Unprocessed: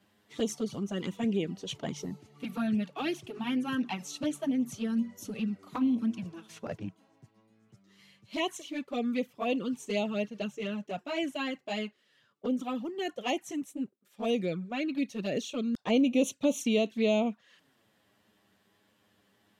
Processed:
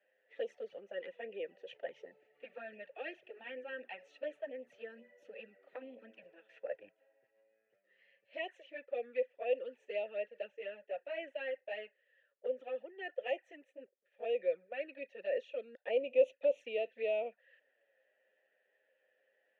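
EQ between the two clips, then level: vowel filter e; three-band isolator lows -21 dB, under 500 Hz, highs -18 dB, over 2400 Hz; +8.5 dB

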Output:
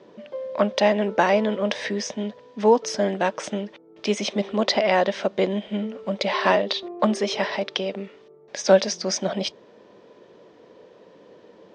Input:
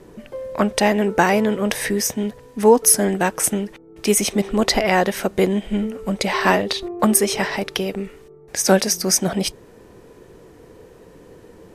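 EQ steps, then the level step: air absorption 99 m; speaker cabinet 200–5800 Hz, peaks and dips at 210 Hz +4 dB, 590 Hz +10 dB, 1000 Hz +4 dB, 3400 Hz +5 dB; high shelf 3200 Hz +9 dB; -6.5 dB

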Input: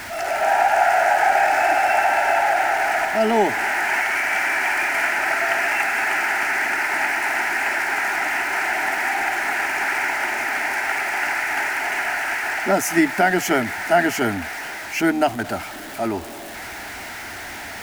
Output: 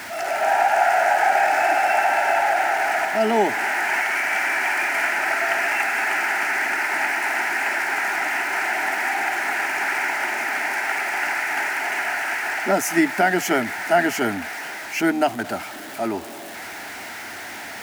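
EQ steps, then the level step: HPF 140 Hz 12 dB/oct; -1.0 dB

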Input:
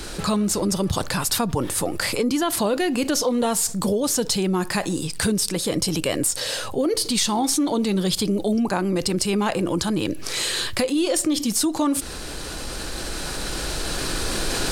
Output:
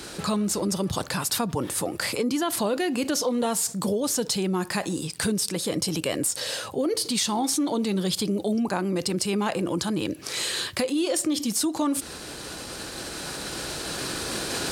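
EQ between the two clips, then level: HPF 99 Hz; -3.5 dB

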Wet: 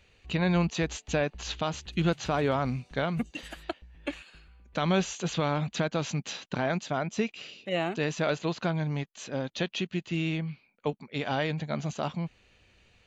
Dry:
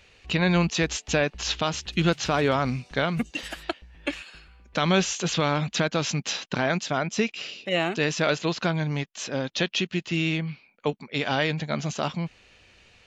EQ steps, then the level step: notch 5300 Hz, Q 9.2; dynamic EQ 770 Hz, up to +4 dB, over -37 dBFS, Q 1; low shelf 340 Hz +6 dB; -8.0 dB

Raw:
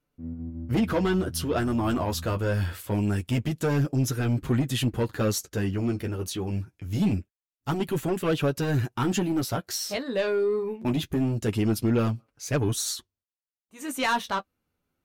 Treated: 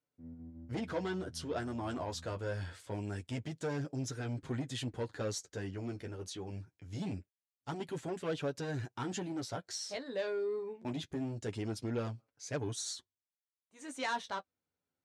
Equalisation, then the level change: speaker cabinet 110–8500 Hz, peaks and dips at 140 Hz -4 dB, 210 Hz -8 dB, 340 Hz -4 dB, 1200 Hz -5 dB, 2700 Hz -5 dB; -9.0 dB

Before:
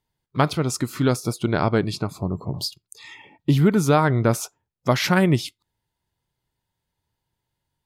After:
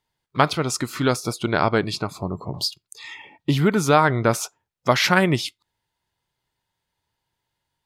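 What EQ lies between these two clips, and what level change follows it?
low shelf 470 Hz -9.5 dB; high shelf 8200 Hz -8 dB; +5.5 dB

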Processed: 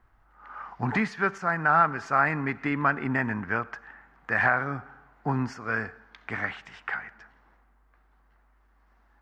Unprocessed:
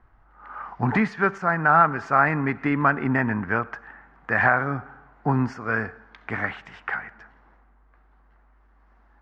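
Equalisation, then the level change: high shelf 3000 Hz +10.5 dB; -5.5 dB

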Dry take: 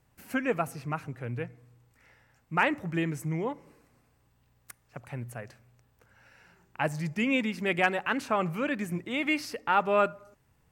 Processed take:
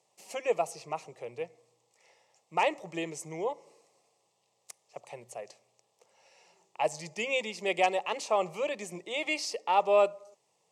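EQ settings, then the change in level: HPF 230 Hz 24 dB/oct; synth low-pass 7100 Hz, resonance Q 1.7; fixed phaser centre 630 Hz, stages 4; +3.0 dB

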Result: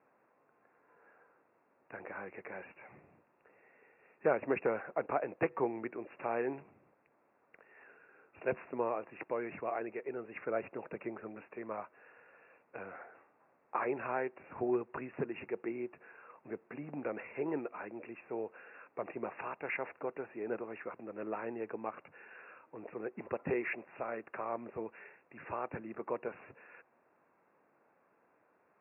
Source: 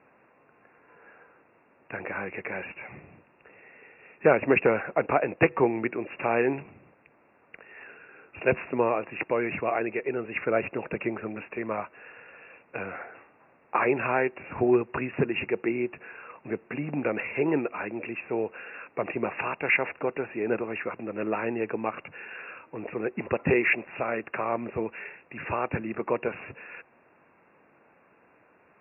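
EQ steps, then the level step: HPF 970 Hz 6 dB/oct; LPF 1800 Hz 12 dB/oct; tilt -3 dB/oct; -6.0 dB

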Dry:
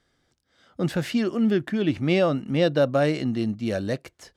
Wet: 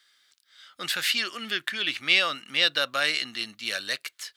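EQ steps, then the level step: differentiator; band shelf 2200 Hz +10 dB 2.3 oct; +9.0 dB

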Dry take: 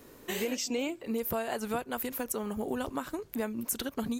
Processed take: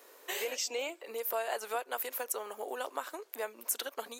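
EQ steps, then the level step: HPF 470 Hz 24 dB/oct; 0.0 dB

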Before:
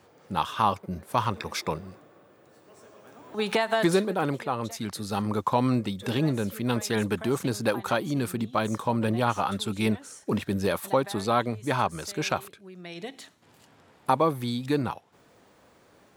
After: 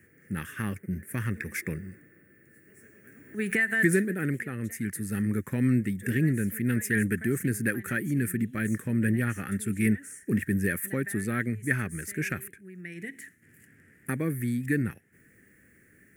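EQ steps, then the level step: EQ curve 220 Hz 0 dB, 390 Hz -5 dB, 710 Hz -24 dB, 1000 Hz -30 dB, 1800 Hz +9 dB, 3800 Hz -25 dB, 9500 Hz +4 dB; +2.0 dB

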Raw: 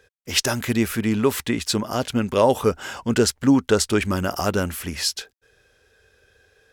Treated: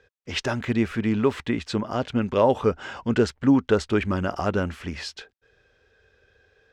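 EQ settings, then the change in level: dynamic EQ 5300 Hz, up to -5 dB, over -39 dBFS, Q 1.2; air absorption 140 m; -1.5 dB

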